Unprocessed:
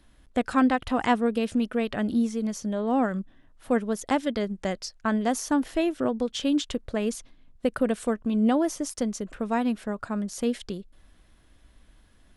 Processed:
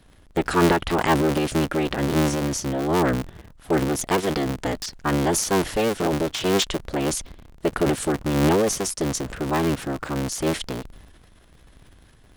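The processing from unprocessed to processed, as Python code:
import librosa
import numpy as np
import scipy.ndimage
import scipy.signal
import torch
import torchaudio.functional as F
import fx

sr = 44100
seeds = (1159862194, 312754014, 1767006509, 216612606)

y = fx.cycle_switch(x, sr, every=3, mode='inverted')
y = fx.transient(y, sr, attack_db=-1, sustain_db=8)
y = y * 10.0 ** (3.0 / 20.0)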